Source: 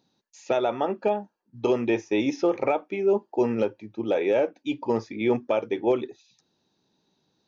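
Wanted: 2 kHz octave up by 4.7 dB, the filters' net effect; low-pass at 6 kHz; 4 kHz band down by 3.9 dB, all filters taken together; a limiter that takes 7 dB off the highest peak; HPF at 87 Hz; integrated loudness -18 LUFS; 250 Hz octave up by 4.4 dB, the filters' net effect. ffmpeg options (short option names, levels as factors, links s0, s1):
-af "highpass=87,lowpass=6000,equalizer=f=250:t=o:g=6,equalizer=f=2000:t=o:g=8.5,equalizer=f=4000:t=o:g=-8,volume=2.82,alimiter=limit=0.447:level=0:latency=1"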